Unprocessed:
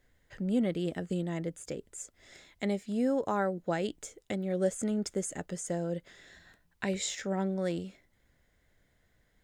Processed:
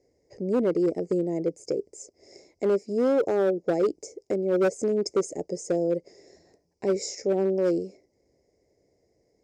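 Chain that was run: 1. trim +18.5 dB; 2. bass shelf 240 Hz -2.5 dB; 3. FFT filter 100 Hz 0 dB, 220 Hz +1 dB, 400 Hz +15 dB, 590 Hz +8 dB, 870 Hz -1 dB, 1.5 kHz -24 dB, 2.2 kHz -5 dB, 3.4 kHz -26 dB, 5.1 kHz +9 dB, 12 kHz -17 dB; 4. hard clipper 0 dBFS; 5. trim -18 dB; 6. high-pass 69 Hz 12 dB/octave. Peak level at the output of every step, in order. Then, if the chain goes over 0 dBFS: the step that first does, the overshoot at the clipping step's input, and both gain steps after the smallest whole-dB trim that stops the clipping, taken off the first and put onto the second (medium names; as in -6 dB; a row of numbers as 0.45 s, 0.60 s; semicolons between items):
+1.5 dBFS, +2.0 dBFS, +9.0 dBFS, 0.0 dBFS, -18.0 dBFS, -15.5 dBFS; step 1, 9.0 dB; step 1 +9.5 dB, step 5 -9 dB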